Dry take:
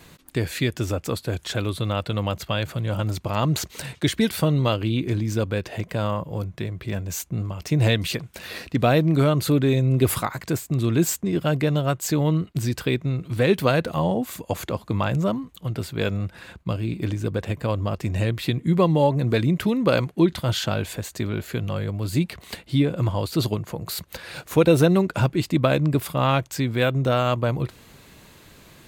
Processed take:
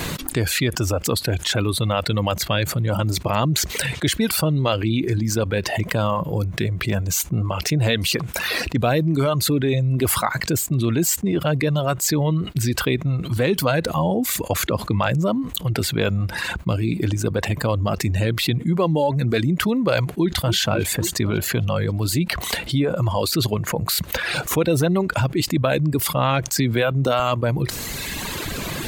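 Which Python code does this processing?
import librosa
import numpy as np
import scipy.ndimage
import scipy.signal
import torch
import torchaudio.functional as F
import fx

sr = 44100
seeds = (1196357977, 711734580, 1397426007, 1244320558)

y = fx.echo_throw(x, sr, start_s=20.1, length_s=0.46, ms=270, feedback_pct=60, wet_db=-12.0)
y = fx.band_squash(y, sr, depth_pct=100, at=(26.58, 27.2))
y = fx.dereverb_blind(y, sr, rt60_s=1.3)
y = fx.env_flatten(y, sr, amount_pct=70)
y = F.gain(torch.from_numpy(y), -3.5).numpy()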